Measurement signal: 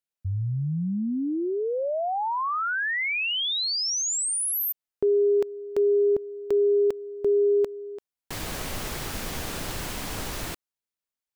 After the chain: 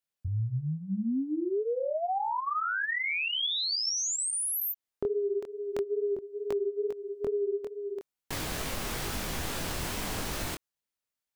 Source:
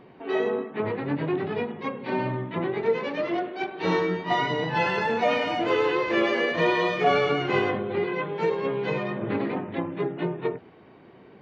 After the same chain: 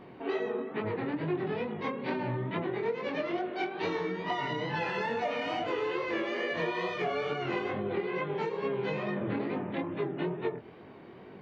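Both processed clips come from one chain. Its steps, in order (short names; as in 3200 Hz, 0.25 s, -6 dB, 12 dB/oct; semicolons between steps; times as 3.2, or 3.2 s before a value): compressor 10:1, threshold -30 dBFS; chorus 2.3 Hz, delay 19 ms, depth 6.9 ms; gain +4 dB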